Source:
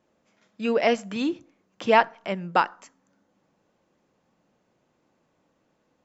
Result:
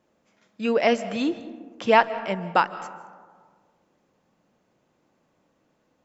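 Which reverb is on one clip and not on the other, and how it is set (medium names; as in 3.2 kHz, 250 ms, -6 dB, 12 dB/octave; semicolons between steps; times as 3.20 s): algorithmic reverb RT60 1.7 s, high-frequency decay 0.35×, pre-delay 115 ms, DRR 14.5 dB; trim +1 dB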